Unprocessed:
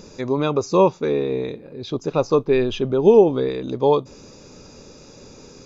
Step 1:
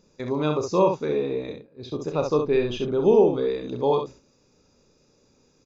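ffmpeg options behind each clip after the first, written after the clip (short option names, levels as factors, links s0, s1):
-filter_complex "[0:a]agate=range=0.2:threshold=0.0224:ratio=16:detection=peak,asplit=2[s0][s1];[s1]aecho=0:1:33|66:0.355|0.501[s2];[s0][s2]amix=inputs=2:normalize=0,volume=0.531"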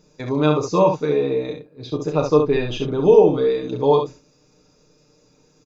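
-af "aecho=1:1:6.6:0.68,volume=1.41"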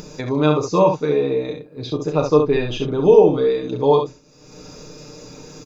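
-af "acompressor=mode=upward:threshold=0.0631:ratio=2.5,volume=1.12"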